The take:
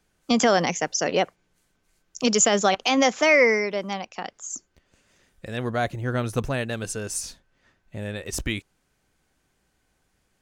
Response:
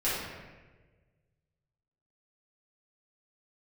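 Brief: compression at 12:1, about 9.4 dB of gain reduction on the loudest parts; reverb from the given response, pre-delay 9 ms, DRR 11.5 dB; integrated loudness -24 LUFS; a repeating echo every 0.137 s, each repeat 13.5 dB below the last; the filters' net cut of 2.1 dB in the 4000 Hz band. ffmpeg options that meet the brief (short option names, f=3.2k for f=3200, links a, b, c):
-filter_complex "[0:a]equalizer=f=4k:t=o:g=-3,acompressor=threshold=-23dB:ratio=12,aecho=1:1:137|274:0.211|0.0444,asplit=2[a][b];[1:a]atrim=start_sample=2205,adelay=9[c];[b][c]afir=irnorm=-1:irlink=0,volume=-21.5dB[d];[a][d]amix=inputs=2:normalize=0,volume=5.5dB"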